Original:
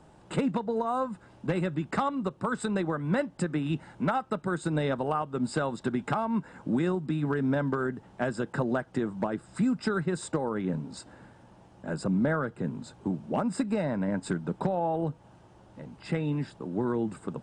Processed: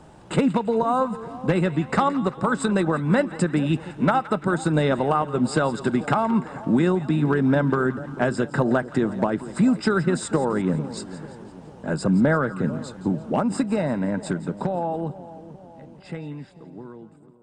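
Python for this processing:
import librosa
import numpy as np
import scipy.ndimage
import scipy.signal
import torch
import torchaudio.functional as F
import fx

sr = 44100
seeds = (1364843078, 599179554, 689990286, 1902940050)

y = fx.fade_out_tail(x, sr, length_s=4.77)
y = fx.echo_split(y, sr, split_hz=920.0, low_ms=444, high_ms=170, feedback_pct=52, wet_db=-15.0)
y = y * librosa.db_to_amplitude(7.5)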